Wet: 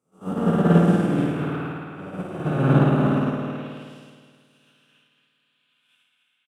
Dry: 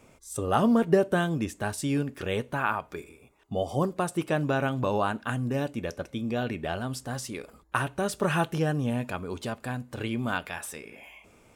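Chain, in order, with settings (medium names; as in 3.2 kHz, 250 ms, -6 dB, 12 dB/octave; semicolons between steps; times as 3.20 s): spectral blur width 508 ms; peaking EQ 1.3 kHz +6 dB 0.21 oct; time stretch by phase-locked vocoder 0.56×; high-pass sweep 160 Hz -> 3.2 kHz, 3.09–3.66 s; on a send: delay 285 ms -4.5 dB; on the sum: spring tank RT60 4 s, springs 53 ms, chirp 75 ms, DRR -6.5 dB; in parallel at -5.5 dB: saturation -24 dBFS, distortion -7 dB; on the sum: upward expansion 2.5:1, over -37 dBFS; trim +3 dB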